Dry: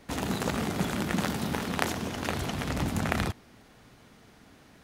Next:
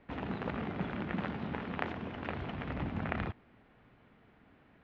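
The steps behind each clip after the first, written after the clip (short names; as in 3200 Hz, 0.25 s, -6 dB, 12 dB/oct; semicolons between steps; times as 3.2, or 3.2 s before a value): LPF 2800 Hz 24 dB/oct; gain -7 dB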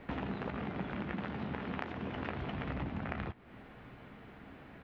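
compressor 5:1, threshold -47 dBFS, peak gain reduction 17 dB; doubler 15 ms -12 dB; gain +10 dB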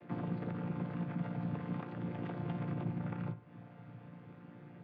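chord vocoder major triad, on A#2; on a send at -12 dB: reverb, pre-delay 53 ms; on the sum: gain +2.5 dB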